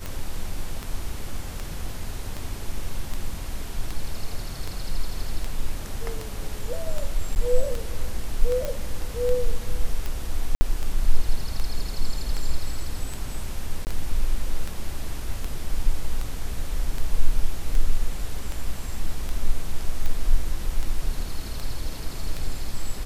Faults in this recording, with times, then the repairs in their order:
scratch tick 78 rpm −16 dBFS
0:07.35–0:07.36: drop-out 9.4 ms
0:08.65: click −14 dBFS
0:10.55–0:10.61: drop-out 60 ms
0:13.85–0:13.87: drop-out 19 ms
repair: click removal
repair the gap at 0:07.35, 9.4 ms
repair the gap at 0:10.55, 60 ms
repair the gap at 0:13.85, 19 ms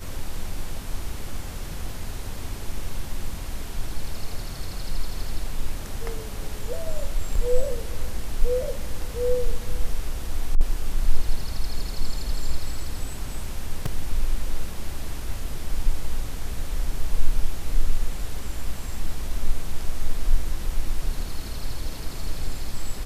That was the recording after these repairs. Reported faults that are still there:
none of them is left

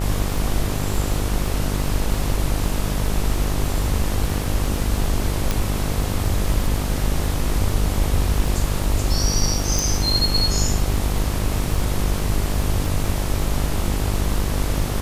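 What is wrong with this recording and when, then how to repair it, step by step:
mains buzz 50 Hz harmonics 26 −24 dBFS
surface crackle 31 per second −27 dBFS
0:05.51: click
0:09.79: click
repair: click removal
hum removal 50 Hz, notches 26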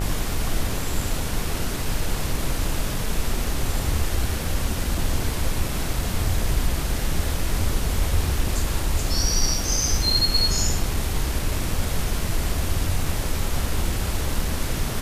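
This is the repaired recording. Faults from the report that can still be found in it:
none of them is left

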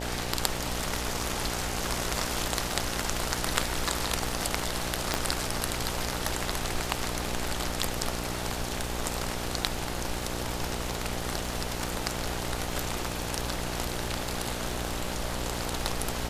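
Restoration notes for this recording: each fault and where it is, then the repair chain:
mains buzz 60 Hz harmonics 15 −36 dBFS
surface crackle 26 per second −38 dBFS
0:05.14: click −9 dBFS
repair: click removal
hum removal 60 Hz, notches 15

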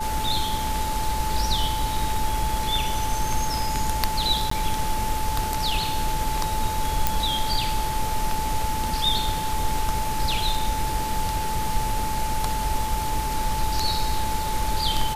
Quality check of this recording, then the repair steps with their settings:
whistle 870 Hz −27 dBFS
0:04.50–0:04.51: drop-out 14 ms
0:07.07: click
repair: click removal
notch filter 870 Hz, Q 30
repair the gap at 0:04.50, 14 ms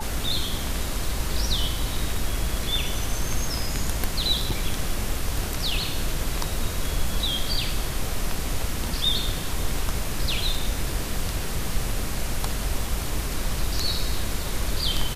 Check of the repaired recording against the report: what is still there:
none of them is left

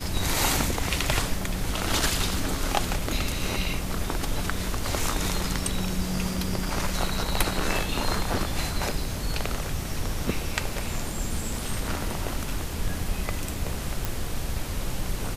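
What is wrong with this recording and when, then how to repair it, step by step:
0:14.05: click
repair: click removal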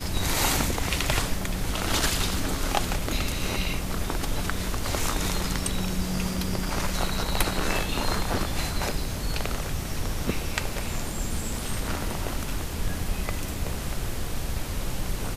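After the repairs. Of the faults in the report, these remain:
none of them is left

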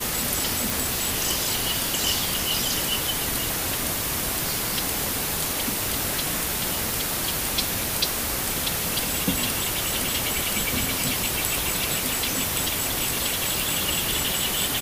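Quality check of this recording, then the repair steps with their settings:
0:00.70: click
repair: click removal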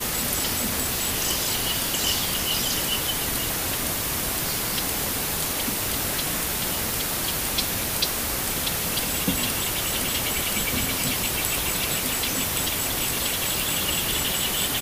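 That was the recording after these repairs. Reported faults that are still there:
none of them is left

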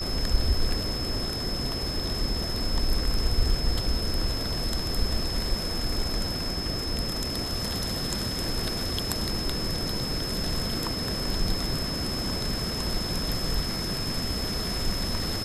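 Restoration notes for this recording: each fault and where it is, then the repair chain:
whistle 5,200 Hz −32 dBFS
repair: notch filter 5,200 Hz, Q 30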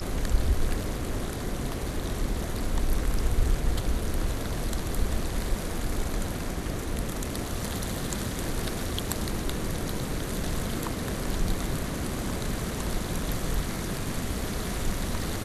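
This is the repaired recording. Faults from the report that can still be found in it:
none of them is left

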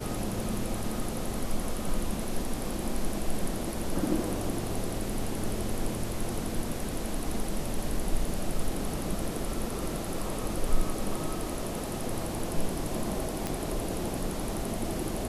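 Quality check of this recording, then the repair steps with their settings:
0:13.47: click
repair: click removal

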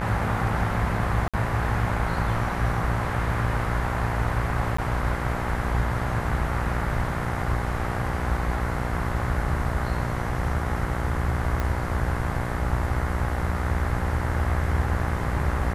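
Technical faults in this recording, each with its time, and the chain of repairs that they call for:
mains buzz 60 Hz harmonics 36 −30 dBFS
0:01.28–0:01.34: drop-out 56 ms
0:04.77–0:04.78: drop-out 14 ms
0:11.60: click −14 dBFS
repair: click removal
hum removal 60 Hz, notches 36
repair the gap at 0:01.28, 56 ms
repair the gap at 0:04.77, 14 ms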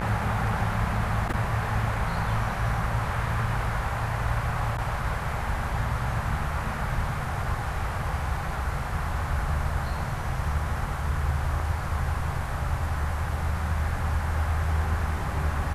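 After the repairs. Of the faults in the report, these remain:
none of them is left

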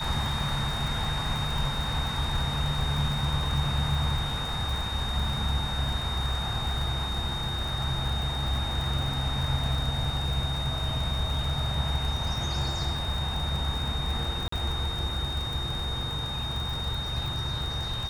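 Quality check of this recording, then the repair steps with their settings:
surface crackle 46 per second −31 dBFS
whistle 3,700 Hz −33 dBFS
0:14.48–0:14.52: drop-out 44 ms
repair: click removal
notch filter 3,700 Hz, Q 30
repair the gap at 0:14.48, 44 ms

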